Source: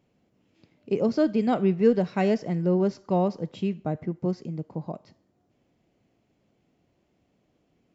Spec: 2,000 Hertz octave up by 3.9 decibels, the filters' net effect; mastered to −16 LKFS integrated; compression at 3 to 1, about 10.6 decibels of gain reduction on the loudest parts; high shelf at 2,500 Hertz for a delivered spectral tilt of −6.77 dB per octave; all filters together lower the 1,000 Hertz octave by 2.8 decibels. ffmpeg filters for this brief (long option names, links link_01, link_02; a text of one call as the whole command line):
ffmpeg -i in.wav -af "equalizer=frequency=1000:width_type=o:gain=-6,equalizer=frequency=2000:width_type=o:gain=4.5,highshelf=frequency=2500:gain=5,acompressor=threshold=-29dB:ratio=3,volume=17dB" out.wav